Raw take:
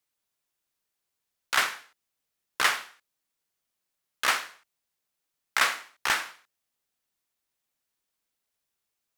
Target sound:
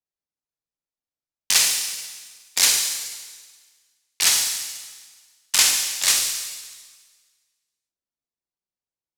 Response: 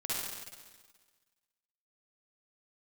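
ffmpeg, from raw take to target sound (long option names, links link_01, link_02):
-filter_complex "[0:a]aexciter=amount=13.3:drive=2.5:freq=3000,asetrate=60591,aresample=44100,atempo=0.727827,adynamicsmooth=sensitivity=7:basefreq=1200,asplit=2[link_01][link_02];[link_02]asetrate=22050,aresample=44100,atempo=2,volume=-6dB[link_03];[link_01][link_03]amix=inputs=2:normalize=0,asplit=2[link_04][link_05];[1:a]atrim=start_sample=2205,highshelf=frequency=4100:gain=9[link_06];[link_05][link_06]afir=irnorm=-1:irlink=0,volume=-8.5dB[link_07];[link_04][link_07]amix=inputs=2:normalize=0,volume=-8dB"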